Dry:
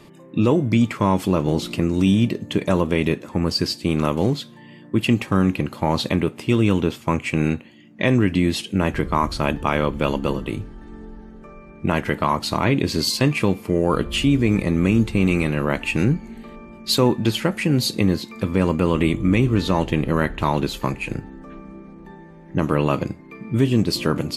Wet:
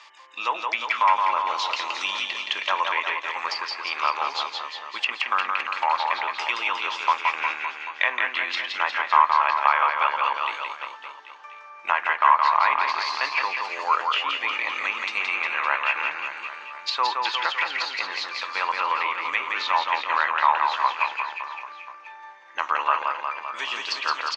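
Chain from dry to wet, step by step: Chebyshev band-pass 940–6200 Hz, order 3; treble ducked by the level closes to 1900 Hz, closed at -26 dBFS; reverse bouncing-ball echo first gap 0.17 s, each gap 1.1×, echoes 5; gain +6 dB

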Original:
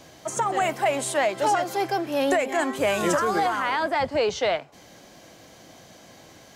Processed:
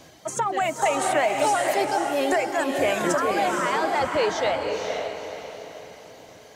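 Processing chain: reverb removal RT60 2 s; diffused feedback echo 0.497 s, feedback 42%, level -3.5 dB; 0.82–1.85 three-band squash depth 100%

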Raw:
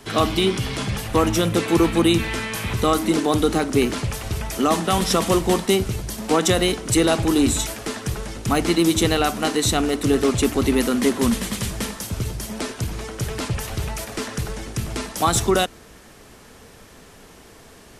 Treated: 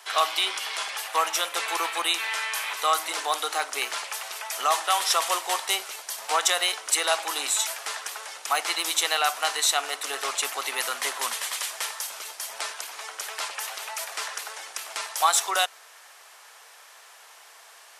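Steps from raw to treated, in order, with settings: HPF 740 Hz 24 dB/oct

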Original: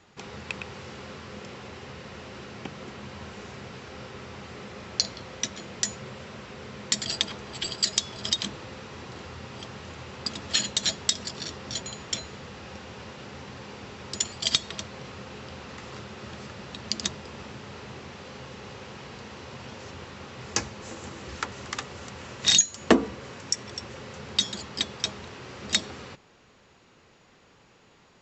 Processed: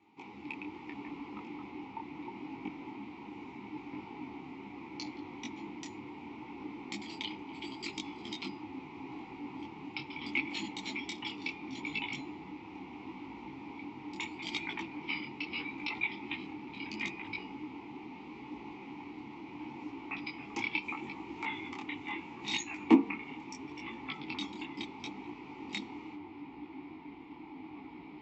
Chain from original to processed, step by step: echoes that change speed 0.178 s, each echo -6 st, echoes 3; vowel filter u; detuned doubles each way 26 cents; gain +10 dB

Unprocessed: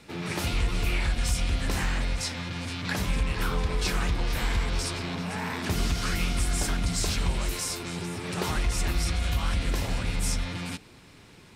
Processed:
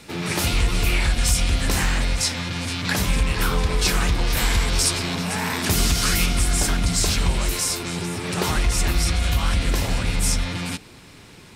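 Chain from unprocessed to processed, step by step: high shelf 5000 Hz +7 dB, from 4.37 s +12 dB, from 6.26 s +3.5 dB; gain +6 dB

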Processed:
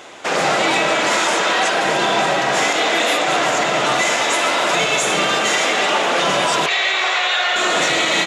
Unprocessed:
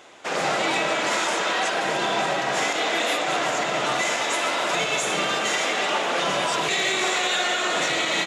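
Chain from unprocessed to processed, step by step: 6.66–7.56 three-band isolator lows -21 dB, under 550 Hz, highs -23 dB, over 5200 Hz; in parallel at +0.5 dB: limiter -23.5 dBFS, peak gain reduction 10 dB; on the sum: gain +3.5 dB

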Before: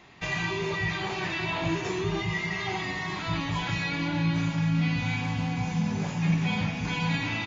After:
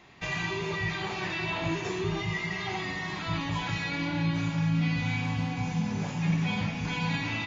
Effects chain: on a send: reverb, pre-delay 3 ms, DRR 11 dB; on the sum: gain -2 dB

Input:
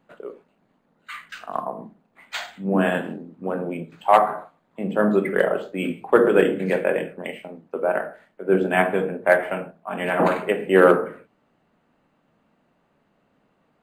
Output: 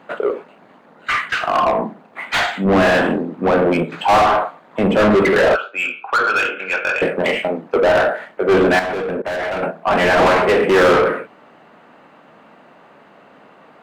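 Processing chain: 5.55–7.02 double band-pass 1900 Hz, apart 0.79 oct; overdrive pedal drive 34 dB, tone 1900 Hz, clips at -2 dBFS; 8.79–9.63 level quantiser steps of 19 dB; gain -3 dB

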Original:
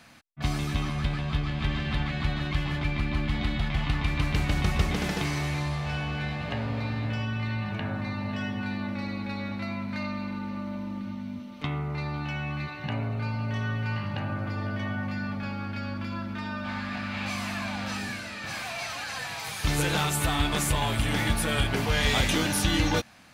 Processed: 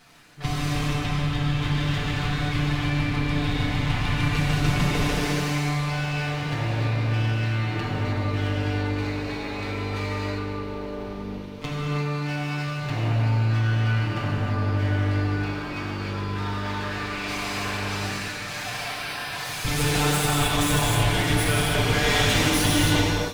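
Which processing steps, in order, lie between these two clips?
minimum comb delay 6.8 ms; 18.72–19.33 bell 6900 Hz -13 dB 0.47 oct; non-linear reverb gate 0.34 s flat, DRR -4 dB

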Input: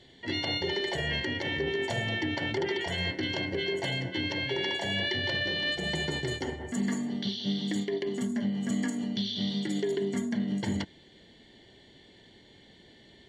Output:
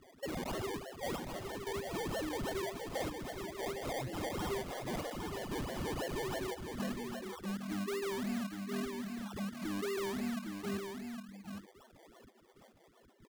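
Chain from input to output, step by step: low shelf 350 Hz -11.5 dB; in parallel at -1 dB: negative-ratio compressor -39 dBFS; on the sum: step gate "xxxxxx..x....x." 117 bpm -12 dB; loudest bins only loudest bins 4; decimation with a swept rate 26×, swing 60% 3.1 Hz; soft clip -35.5 dBFS, distortion -11 dB; on a send: echo 0.81 s -6 dB; on the sum: gain +1 dB

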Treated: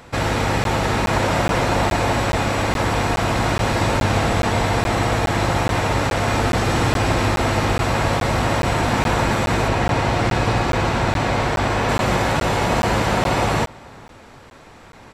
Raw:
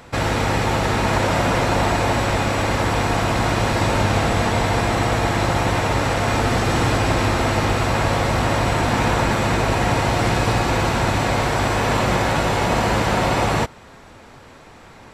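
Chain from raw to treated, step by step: 9.68–11.89 high shelf 8500 Hz -10.5 dB; outdoor echo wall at 75 m, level -24 dB; crackling interface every 0.42 s, samples 512, zero, from 0.64

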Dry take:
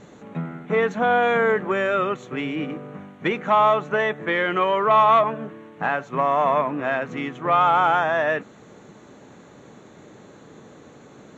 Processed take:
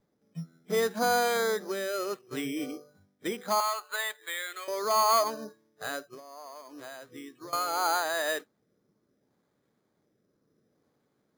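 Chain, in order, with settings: spectral noise reduction 20 dB; 3.6–4.68 HPF 1200 Hz 12 dB/oct; 6–7.53 compressor 16:1, threshold -33 dBFS, peak gain reduction 18 dB; rotary speaker horn 0.7 Hz; careless resampling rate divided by 8×, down filtered, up hold; gain -5.5 dB

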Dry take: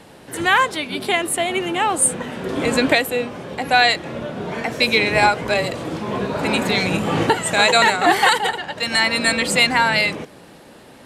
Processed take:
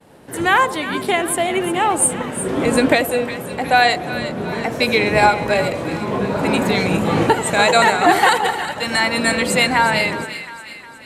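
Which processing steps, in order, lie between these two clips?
expander -39 dBFS; bell 4000 Hz -6 dB 2.3 oct; split-band echo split 990 Hz, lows 86 ms, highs 0.359 s, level -11.5 dB; gain +3 dB

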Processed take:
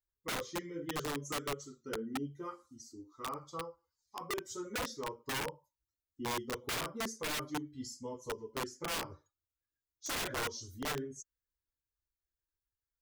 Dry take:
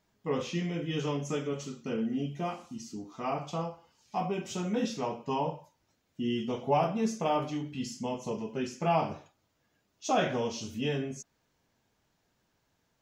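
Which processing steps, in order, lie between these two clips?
per-bin expansion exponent 1.5; fixed phaser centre 710 Hz, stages 6; wrapped overs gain 32.5 dB; gain +1.5 dB

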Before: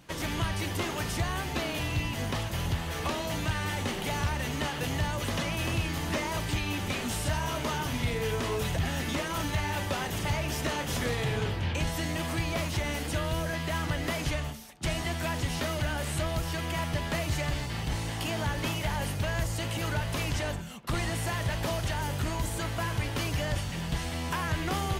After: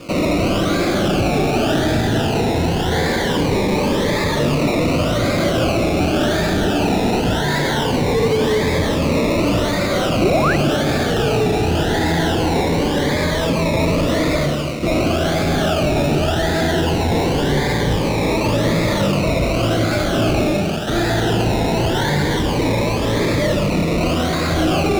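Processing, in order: low shelf 470 Hz -5 dB; in parallel at 0 dB: negative-ratio compressor -36 dBFS; on the sum: flutter echo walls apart 6 m, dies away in 0.39 s; reverb RT60 1.4 s, pre-delay 5 ms, DRR 2 dB; decimation with a swept rate 22×, swing 60% 0.89 Hz; bell 960 Hz -12 dB 1.4 oct; overdrive pedal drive 25 dB, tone 1800 Hz, clips at -14.5 dBFS; painted sound rise, 10.21–10.56, 290–2100 Hz -24 dBFS; cascading phaser rising 0.21 Hz; gain +8 dB

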